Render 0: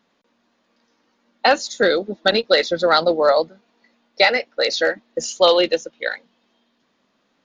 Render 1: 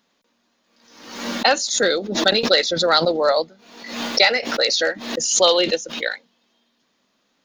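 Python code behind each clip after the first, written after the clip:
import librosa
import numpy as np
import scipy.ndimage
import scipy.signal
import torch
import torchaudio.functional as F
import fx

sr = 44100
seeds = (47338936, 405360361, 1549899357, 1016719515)

y = fx.high_shelf(x, sr, hz=4100.0, db=11.5)
y = fx.pre_swell(y, sr, db_per_s=66.0)
y = F.gain(torch.from_numpy(y), -3.0).numpy()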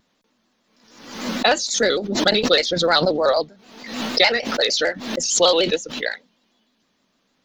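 y = fx.low_shelf(x, sr, hz=160.0, db=9.5)
y = fx.vibrato_shape(y, sr, shape='square', rate_hz=6.6, depth_cents=100.0)
y = F.gain(torch.from_numpy(y), -1.0).numpy()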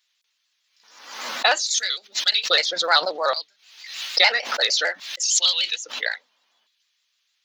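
y = fx.filter_lfo_highpass(x, sr, shape='square', hz=0.6, low_hz=890.0, high_hz=2600.0, q=0.99)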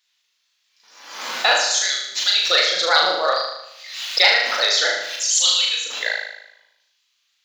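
y = fx.room_flutter(x, sr, wall_m=6.5, rt60_s=0.85)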